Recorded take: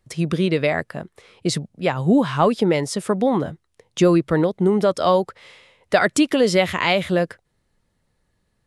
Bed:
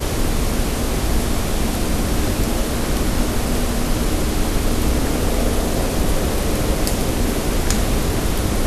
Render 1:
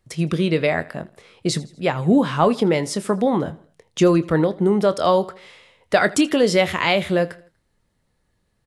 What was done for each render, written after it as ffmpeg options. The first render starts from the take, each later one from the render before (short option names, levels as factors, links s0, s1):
-filter_complex "[0:a]asplit=2[s0][s1];[s1]adelay=25,volume=0.211[s2];[s0][s2]amix=inputs=2:normalize=0,aecho=1:1:81|162|243:0.0841|0.0395|0.0186"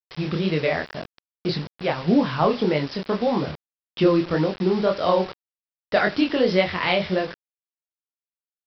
-af "flanger=delay=20:depth=7.4:speed=1.8,aresample=11025,acrusher=bits=5:mix=0:aa=0.000001,aresample=44100"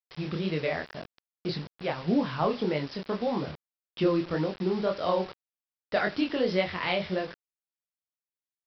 -af "volume=0.447"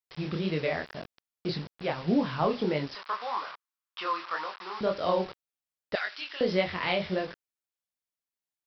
-filter_complex "[0:a]asettb=1/sr,asplit=3[s0][s1][s2];[s0]atrim=end=2.954[s3];[s1]atrim=start=2.95:end=4.81,asetpts=PTS-STARTPTS,afade=t=in:d=0.004:c=qsin,afade=t=out:st=1.856:d=0.004:c=qsin,highpass=f=1100:t=q:w=3.3[s4];[s2]atrim=start=4.806[s5];[s3][s4]acrossfade=d=0.004:c1=hsin:c2=qsin[s6];[s6][s5]acrossfade=d=0.004:c1=qsin:c2=hsin,asettb=1/sr,asplit=3[s7][s8][s9];[s7]atrim=end=5.954[s10];[s8]atrim=start=5.95:end=6.41,asetpts=PTS-STARTPTS,afade=t=in:d=0.004:c=qsin,afade=t=out:st=0.456:d=0.004:c=qsin,highpass=1500[s11];[s9]atrim=start=6.406[s12];[s10][s11]acrossfade=d=0.004:c1=hsin:c2=qsin[s13];[s13][s12]acrossfade=d=0.004:c1=qsin:c2=hsin"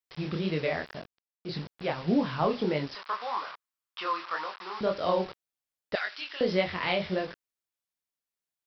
-filter_complex "[0:a]asplit=3[s0][s1][s2];[s0]atrim=end=1.25,asetpts=PTS-STARTPTS,afade=t=out:st=0.97:d=0.28:c=qua:silence=0.133352[s3];[s1]atrim=start=1.25:end=1.3,asetpts=PTS-STARTPTS,volume=0.133[s4];[s2]atrim=start=1.3,asetpts=PTS-STARTPTS,afade=t=in:d=0.28:c=qua:silence=0.133352[s5];[s3][s4][s5]concat=n=3:v=0:a=1"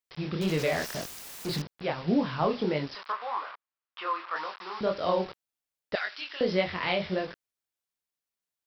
-filter_complex "[0:a]asettb=1/sr,asplit=3[s0][s1][s2];[s0]atrim=end=0.414[s3];[s1]atrim=start=0.41:end=1.62,asetpts=PTS-STARTPTS,afade=t=in:d=0.004:c=qsin,afade=t=out:st=1.206:d=0.004:c=qsin,aeval=exprs='val(0)+0.5*0.0251*sgn(val(0))':c=same[s4];[s2]atrim=start=1.616[s5];[s3][s4]acrossfade=d=0.004:c1=hsin:c2=qsin[s6];[s6][s5]acrossfade=d=0.004:c1=qsin:c2=hsin,asettb=1/sr,asplit=3[s7][s8][s9];[s7]atrim=end=3.124[s10];[s8]atrim=start=3.12:end=4.36,asetpts=PTS-STARTPTS,afade=t=in:d=0.004:c=qsin,afade=t=out:st=1.236:d=0.004:c=qsin,bass=f=250:g=-13,treble=f=4000:g=-13[s11];[s9]atrim=start=4.356[s12];[s10][s11]acrossfade=d=0.004:c1=hsin:c2=qsin[s13];[s13][s12]acrossfade=d=0.004:c1=qsin:c2=hsin"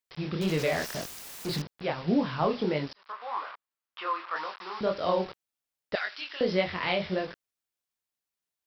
-filter_complex "[0:a]asplit=2[s0][s1];[s0]atrim=end=2.93,asetpts=PTS-STARTPTS,afade=t=out:st=2.926:d=0.004:c=hsin[s2];[s1]atrim=start=2.93,asetpts=PTS-STARTPTS,afade=t=in:d=0.47[s3];[s2][s3]concat=n=2:v=0:a=1"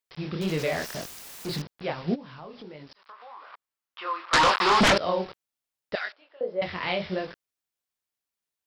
-filter_complex "[0:a]asplit=3[s0][s1][s2];[s0]afade=t=out:st=2.14:d=0.02[s3];[s1]acompressor=threshold=0.00562:ratio=3:attack=3.2:release=140:knee=1:detection=peak,afade=t=in:st=2.14:d=0.02,afade=t=out:st=3.52:d=0.02[s4];[s2]afade=t=in:st=3.52:d=0.02[s5];[s3][s4][s5]amix=inputs=3:normalize=0,asettb=1/sr,asplit=3[s6][s7][s8];[s6]atrim=end=4.334[s9];[s7]atrim=start=4.33:end=4.98,asetpts=PTS-STARTPTS,afade=t=in:d=0.004:c=qsin,afade=t=out:st=0.646:d=0.004:c=qsin,aeval=exprs='0.178*sin(PI/2*7.08*val(0)/0.178)':c=same[s10];[s8]atrim=start=4.976[s11];[s9][s10]acrossfade=d=0.004:c1=hsin:c2=qsin[s12];[s12][s11]acrossfade=d=0.004:c1=qsin:c2=hsin,asettb=1/sr,asplit=3[s13][s14][s15];[s13]atrim=end=6.124[s16];[s14]atrim=start=6.12:end=6.62,asetpts=PTS-STARTPTS,afade=t=in:d=0.004:c=qsin,afade=t=out:st=0.496:d=0.004:c=qsin,bandpass=f=560:t=q:w=2.9[s17];[s15]atrim=start=6.616[s18];[s16][s17]acrossfade=d=0.004:c1=hsin:c2=qsin[s19];[s19][s18]acrossfade=d=0.004:c1=qsin:c2=hsin"